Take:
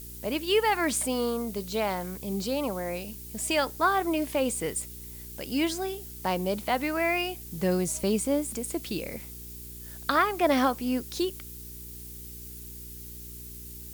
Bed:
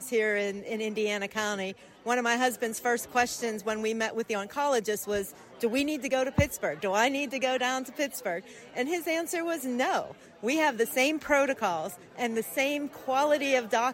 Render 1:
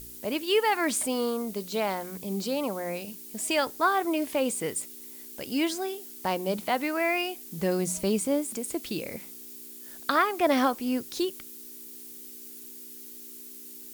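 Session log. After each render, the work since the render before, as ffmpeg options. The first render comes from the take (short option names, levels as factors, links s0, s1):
-af "bandreject=f=60:t=h:w=4,bandreject=f=120:t=h:w=4,bandreject=f=180:t=h:w=4"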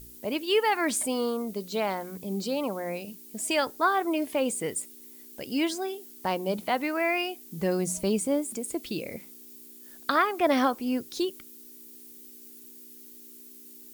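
-af "afftdn=nr=6:nf=-45"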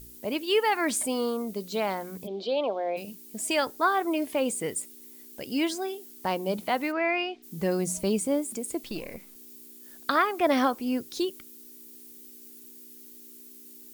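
-filter_complex "[0:a]asplit=3[s0][s1][s2];[s0]afade=t=out:st=2.26:d=0.02[s3];[s1]highpass=f=270:w=0.5412,highpass=f=270:w=1.3066,equalizer=f=270:t=q:w=4:g=-4,equalizer=f=460:t=q:w=4:g=4,equalizer=f=670:t=q:w=4:g=9,equalizer=f=1300:t=q:w=4:g=-5,equalizer=f=1900:t=q:w=4:g=-6,equalizer=f=3400:t=q:w=4:g=9,lowpass=f=4100:w=0.5412,lowpass=f=4100:w=1.3066,afade=t=in:st=2.26:d=0.02,afade=t=out:st=2.96:d=0.02[s4];[s2]afade=t=in:st=2.96:d=0.02[s5];[s3][s4][s5]amix=inputs=3:normalize=0,asplit=3[s6][s7][s8];[s6]afade=t=out:st=6.91:d=0.02[s9];[s7]lowpass=f=4500:w=0.5412,lowpass=f=4500:w=1.3066,afade=t=in:st=6.91:d=0.02,afade=t=out:st=7.42:d=0.02[s10];[s8]afade=t=in:st=7.42:d=0.02[s11];[s9][s10][s11]amix=inputs=3:normalize=0,asettb=1/sr,asplit=3[s12][s13][s14];[s12]atrim=end=8.834[s15];[s13]atrim=start=8.83:end=9.36,asetpts=PTS-STARTPTS,afade=t=in:d=0.004:c=qsin,afade=t=out:st=0.526:d=0.004:c=qsin,aeval=exprs='if(lt(val(0),0),0.447*val(0),val(0))':c=same[s16];[s14]atrim=start=9.356[s17];[s15][s16]acrossfade=d=0.004:c1=hsin:c2=qsin[s18];[s18][s17]acrossfade=d=0.004:c1=qsin:c2=hsin"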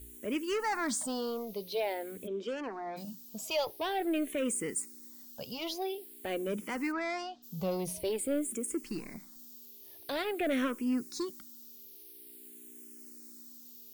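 -filter_complex "[0:a]asoftclip=type=tanh:threshold=0.0668,asplit=2[s0][s1];[s1]afreqshift=-0.48[s2];[s0][s2]amix=inputs=2:normalize=1"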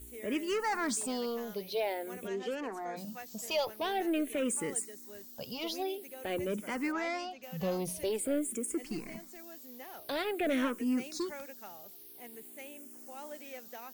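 -filter_complex "[1:a]volume=0.0841[s0];[0:a][s0]amix=inputs=2:normalize=0"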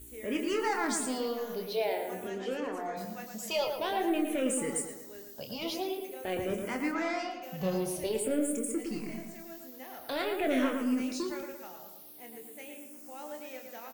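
-filter_complex "[0:a]asplit=2[s0][s1];[s1]adelay=27,volume=0.447[s2];[s0][s2]amix=inputs=2:normalize=0,asplit=2[s3][s4];[s4]adelay=113,lowpass=f=2500:p=1,volume=0.562,asplit=2[s5][s6];[s6]adelay=113,lowpass=f=2500:p=1,volume=0.49,asplit=2[s7][s8];[s8]adelay=113,lowpass=f=2500:p=1,volume=0.49,asplit=2[s9][s10];[s10]adelay=113,lowpass=f=2500:p=1,volume=0.49,asplit=2[s11][s12];[s12]adelay=113,lowpass=f=2500:p=1,volume=0.49,asplit=2[s13][s14];[s14]adelay=113,lowpass=f=2500:p=1,volume=0.49[s15];[s5][s7][s9][s11][s13][s15]amix=inputs=6:normalize=0[s16];[s3][s16]amix=inputs=2:normalize=0"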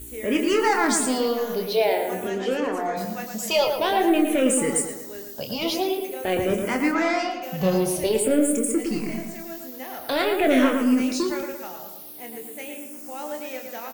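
-af "volume=3.16"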